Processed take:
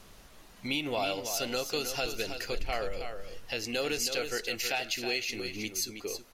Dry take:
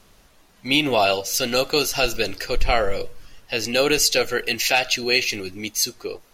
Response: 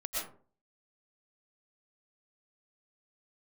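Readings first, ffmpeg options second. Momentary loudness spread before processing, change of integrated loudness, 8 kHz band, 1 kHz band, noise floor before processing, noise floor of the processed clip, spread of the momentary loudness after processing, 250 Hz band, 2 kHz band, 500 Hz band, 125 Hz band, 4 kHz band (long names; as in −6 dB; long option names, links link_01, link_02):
10 LU, −12.0 dB, −10.5 dB, −12.5 dB, −55 dBFS, −55 dBFS, 7 LU, −11.0 dB, −11.5 dB, −12.0 dB, −11.0 dB, −11.5 dB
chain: -af "acompressor=threshold=-40dB:ratio=2,aecho=1:1:321:0.398"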